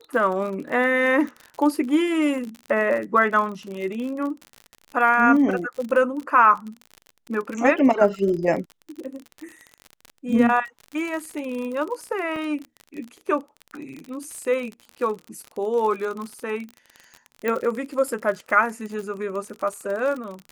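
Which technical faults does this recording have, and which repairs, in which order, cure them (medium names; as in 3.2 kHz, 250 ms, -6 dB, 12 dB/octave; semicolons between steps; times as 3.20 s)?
crackle 45 per s -29 dBFS
12.36 s: dropout 2.7 ms
17.48 s: pop -12 dBFS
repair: de-click; interpolate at 12.36 s, 2.7 ms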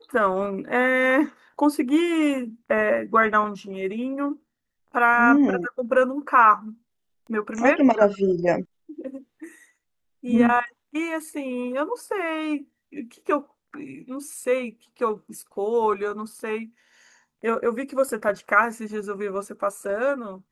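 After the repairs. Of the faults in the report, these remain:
nothing left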